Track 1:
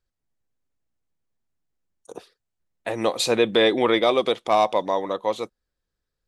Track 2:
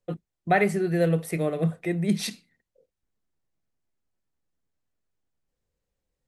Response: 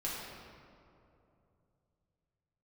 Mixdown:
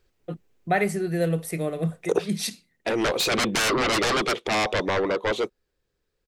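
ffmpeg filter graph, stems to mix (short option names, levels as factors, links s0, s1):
-filter_complex "[0:a]equalizer=f=400:t=o:w=0.67:g=10,equalizer=f=2500:t=o:w=0.67:g=5,equalizer=f=10000:t=o:w=0.67:g=-4,aeval=exprs='0.75*sin(PI/2*6.31*val(0)/0.75)':c=same,volume=0.398,afade=t=out:st=2.12:d=0.46:silence=0.354813,asplit=2[s0][s1];[1:a]adynamicequalizer=threshold=0.00708:dfrequency=3900:dqfactor=0.7:tfrequency=3900:tqfactor=0.7:attack=5:release=100:ratio=0.375:range=3:mode=boostabove:tftype=highshelf,adelay=200,volume=0.841[s2];[s1]apad=whole_len=285343[s3];[s2][s3]sidechaincompress=threshold=0.0126:ratio=8:attack=37:release=103[s4];[s0][s4]amix=inputs=2:normalize=0"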